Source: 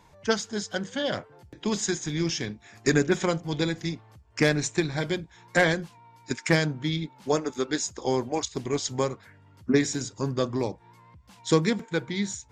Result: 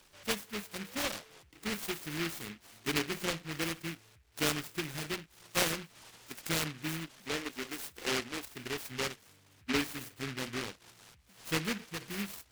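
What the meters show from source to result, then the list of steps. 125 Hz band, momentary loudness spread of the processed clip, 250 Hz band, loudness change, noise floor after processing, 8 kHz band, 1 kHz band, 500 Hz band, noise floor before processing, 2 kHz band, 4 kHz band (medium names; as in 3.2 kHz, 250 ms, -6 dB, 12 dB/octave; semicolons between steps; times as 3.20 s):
-13.0 dB, 12 LU, -11.5 dB, -8.5 dB, -63 dBFS, -6.5 dB, -8.0 dB, -13.5 dB, -55 dBFS, -7.0 dB, -3.5 dB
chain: peaking EQ 98 Hz -10.5 dB 2.2 oct; harmonic-percussive split percussive -13 dB; in parallel at -1 dB: compression, threshold -40 dBFS, peak gain reduction 19.5 dB; on the sum: delay time shaken by noise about 2 kHz, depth 0.36 ms; trim -6 dB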